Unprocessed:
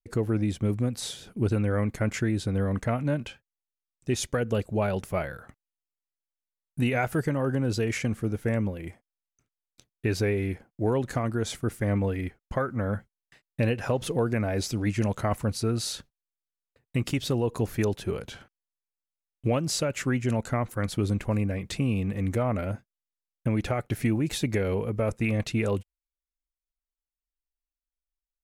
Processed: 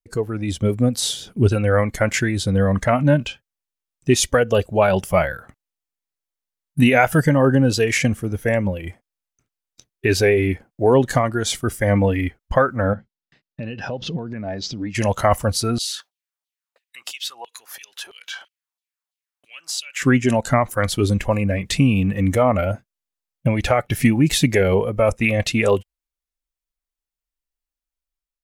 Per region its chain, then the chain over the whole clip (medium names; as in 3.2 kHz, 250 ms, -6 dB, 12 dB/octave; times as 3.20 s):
12.93–14.95 s: peaking EQ 200 Hz +10 dB 1.7 oct + compression, threshold -23 dBFS + four-pole ladder low-pass 5.9 kHz, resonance 30%
15.78–20.02 s: compression 3:1, threshold -39 dBFS + LFO high-pass saw down 3 Hz 660–3600 Hz
whole clip: spectral noise reduction 9 dB; level rider gain up to 5.5 dB; trim +7 dB